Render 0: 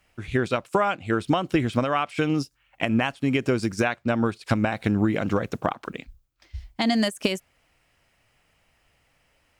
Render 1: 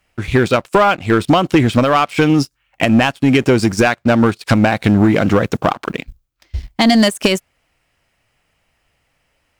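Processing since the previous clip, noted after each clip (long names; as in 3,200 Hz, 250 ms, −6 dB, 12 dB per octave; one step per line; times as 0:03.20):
leveller curve on the samples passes 2
level +5 dB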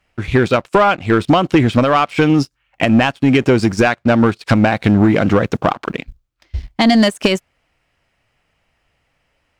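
high-shelf EQ 8,000 Hz −11.5 dB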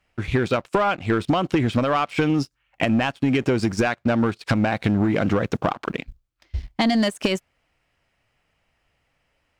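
downward compressor, threshold −12 dBFS, peak gain reduction 5 dB
level −4.5 dB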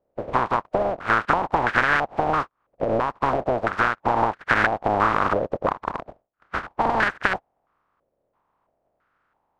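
compressing power law on the bin magnitudes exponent 0.12
low-pass on a step sequencer 3 Hz 560–1,600 Hz
level +1.5 dB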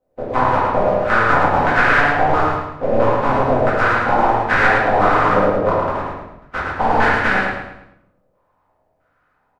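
repeating echo 108 ms, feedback 38%, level −3.5 dB
rectangular room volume 140 cubic metres, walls mixed, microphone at 2 metres
level −3 dB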